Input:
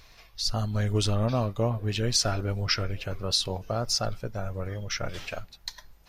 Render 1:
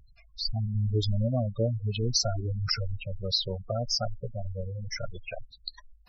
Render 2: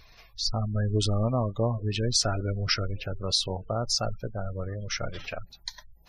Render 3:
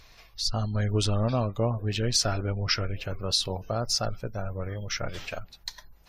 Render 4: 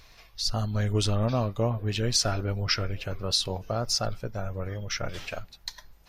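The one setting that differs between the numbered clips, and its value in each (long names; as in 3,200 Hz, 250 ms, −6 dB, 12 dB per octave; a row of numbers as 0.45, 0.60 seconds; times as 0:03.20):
gate on every frequency bin, under each frame's peak: −10, −25, −40, −55 decibels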